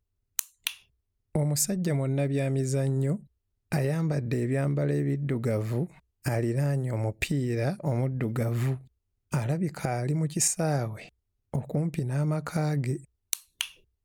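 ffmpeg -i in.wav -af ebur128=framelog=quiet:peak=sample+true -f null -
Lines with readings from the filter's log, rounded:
Integrated loudness:
  I:         -29.0 LUFS
  Threshold: -39.2 LUFS
Loudness range:
  LRA:         1.5 LU
  Threshold: -49.1 LUFS
  LRA low:   -29.8 LUFS
  LRA high:  -28.3 LUFS
Sample peak:
  Peak:       -8.9 dBFS
True peak:
  Peak:       -8.5 dBFS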